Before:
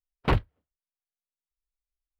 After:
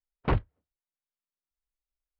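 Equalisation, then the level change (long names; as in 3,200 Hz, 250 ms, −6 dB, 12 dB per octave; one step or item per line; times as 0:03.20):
high-frequency loss of the air 78 metres
high-shelf EQ 4,000 Hz −12 dB
−2.0 dB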